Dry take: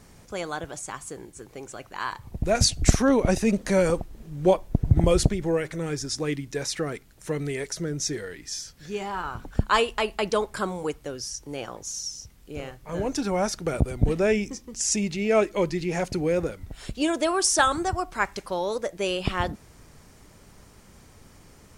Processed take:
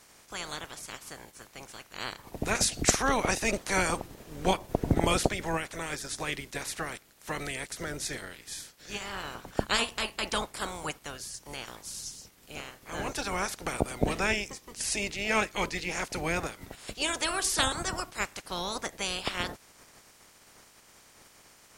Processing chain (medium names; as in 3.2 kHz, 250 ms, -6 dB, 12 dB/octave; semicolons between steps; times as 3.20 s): spectral peaks clipped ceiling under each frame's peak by 23 dB; short-mantissa float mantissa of 6-bit; trim -6 dB